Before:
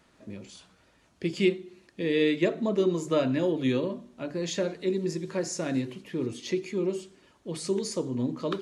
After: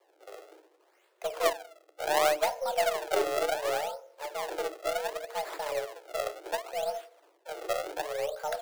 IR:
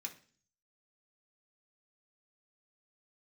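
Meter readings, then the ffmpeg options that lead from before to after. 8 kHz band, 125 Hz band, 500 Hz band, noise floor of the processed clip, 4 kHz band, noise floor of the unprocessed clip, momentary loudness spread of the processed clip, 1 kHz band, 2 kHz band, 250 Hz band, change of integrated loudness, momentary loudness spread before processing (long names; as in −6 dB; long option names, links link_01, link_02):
−0.5 dB, below −20 dB, −2.0 dB, −67 dBFS, −0.5 dB, −64 dBFS, 14 LU, +10.5 dB, +1.5 dB, −21.0 dB, −3.0 dB, 14 LU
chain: -filter_complex "[0:a]asplit=2[link_01][link_02];[1:a]atrim=start_sample=2205,lowpass=3600[link_03];[link_02][link_03]afir=irnorm=-1:irlink=0,volume=-4.5dB[link_04];[link_01][link_04]amix=inputs=2:normalize=0,acrusher=samples=37:mix=1:aa=0.000001:lfo=1:lforange=59.2:lforate=0.68,afreqshift=300,aeval=exprs='0.376*(cos(1*acos(clip(val(0)/0.376,-1,1)))-cos(1*PI/2))+0.0473*(cos(3*acos(clip(val(0)/0.376,-1,1)))-cos(3*PI/2))+0.00841*(cos(5*acos(clip(val(0)/0.376,-1,1)))-cos(5*PI/2))+0.00266*(cos(7*acos(clip(val(0)/0.376,-1,1)))-cos(7*PI/2))+0.00473*(cos(8*acos(clip(val(0)/0.376,-1,1)))-cos(8*PI/2))':channel_layout=same,volume=-1.5dB"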